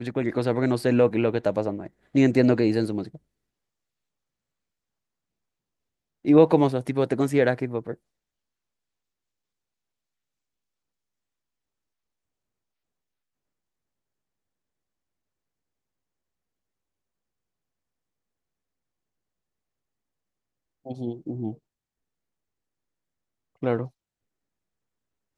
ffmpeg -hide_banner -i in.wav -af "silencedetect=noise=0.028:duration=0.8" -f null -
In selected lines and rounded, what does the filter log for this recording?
silence_start: 3.15
silence_end: 6.25 | silence_duration: 3.10
silence_start: 7.93
silence_end: 20.86 | silence_duration: 12.93
silence_start: 21.52
silence_end: 23.63 | silence_duration: 2.11
silence_start: 23.86
silence_end: 25.37 | silence_duration: 1.51